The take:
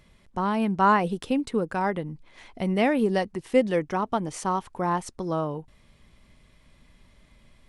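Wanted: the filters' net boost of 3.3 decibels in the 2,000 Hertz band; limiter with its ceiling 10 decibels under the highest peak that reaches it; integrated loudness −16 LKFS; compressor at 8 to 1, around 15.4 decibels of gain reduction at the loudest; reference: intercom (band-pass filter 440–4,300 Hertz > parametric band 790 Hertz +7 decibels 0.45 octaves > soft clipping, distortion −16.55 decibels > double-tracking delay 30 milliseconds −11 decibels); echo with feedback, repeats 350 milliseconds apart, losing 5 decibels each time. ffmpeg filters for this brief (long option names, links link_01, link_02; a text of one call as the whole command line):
ffmpeg -i in.wav -filter_complex "[0:a]equalizer=frequency=2000:width_type=o:gain=4,acompressor=threshold=-30dB:ratio=8,alimiter=level_in=5dB:limit=-24dB:level=0:latency=1,volume=-5dB,highpass=440,lowpass=4300,equalizer=frequency=790:width_type=o:width=0.45:gain=7,aecho=1:1:350|700|1050|1400|1750|2100|2450:0.562|0.315|0.176|0.0988|0.0553|0.031|0.0173,asoftclip=threshold=-29.5dB,asplit=2[link_01][link_02];[link_02]adelay=30,volume=-11dB[link_03];[link_01][link_03]amix=inputs=2:normalize=0,volume=24dB" out.wav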